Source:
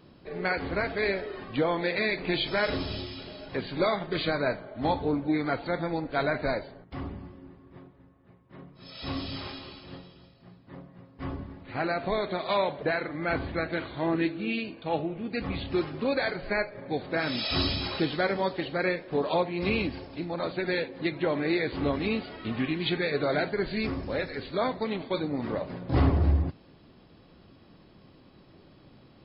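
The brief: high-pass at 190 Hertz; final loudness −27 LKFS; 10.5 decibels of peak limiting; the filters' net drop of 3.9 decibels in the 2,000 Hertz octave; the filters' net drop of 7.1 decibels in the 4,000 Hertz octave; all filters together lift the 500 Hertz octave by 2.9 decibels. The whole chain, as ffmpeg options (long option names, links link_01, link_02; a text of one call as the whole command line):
ffmpeg -i in.wav -af "highpass=190,equalizer=frequency=500:width_type=o:gain=4,equalizer=frequency=2000:width_type=o:gain=-3.5,equalizer=frequency=4000:width_type=o:gain=-7.5,volume=6dB,alimiter=limit=-16.5dB:level=0:latency=1" out.wav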